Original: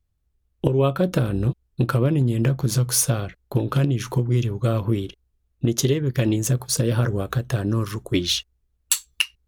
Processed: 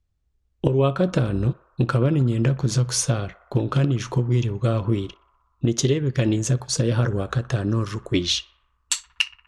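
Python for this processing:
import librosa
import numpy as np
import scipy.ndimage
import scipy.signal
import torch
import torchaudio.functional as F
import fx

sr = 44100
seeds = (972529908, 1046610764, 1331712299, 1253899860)

y = scipy.signal.sosfilt(scipy.signal.butter(4, 8100.0, 'lowpass', fs=sr, output='sos'), x)
y = fx.echo_banded(y, sr, ms=61, feedback_pct=81, hz=1100.0, wet_db=-18.0)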